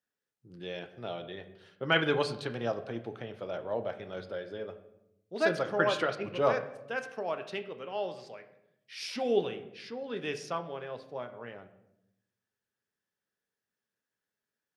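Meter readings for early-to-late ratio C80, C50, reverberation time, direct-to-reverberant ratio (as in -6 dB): 14.5 dB, 12.5 dB, 0.85 s, 7.0 dB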